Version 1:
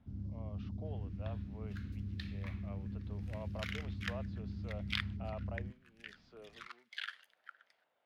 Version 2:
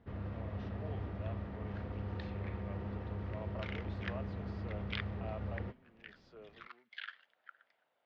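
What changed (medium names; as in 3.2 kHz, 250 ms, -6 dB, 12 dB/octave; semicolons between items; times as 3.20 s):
first sound: remove Chebyshev band-stop 260–5600 Hz, order 3; second sound: add distance through air 250 m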